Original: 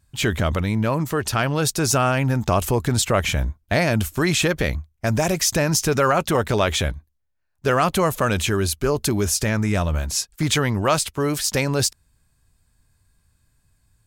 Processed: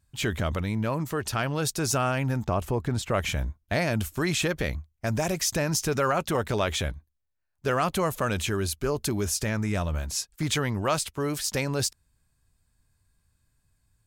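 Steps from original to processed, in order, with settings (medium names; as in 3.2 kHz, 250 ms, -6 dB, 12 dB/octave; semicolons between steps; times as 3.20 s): 2.44–3.10 s: treble shelf 2.4 kHz -> 3.9 kHz -11 dB; trim -6.5 dB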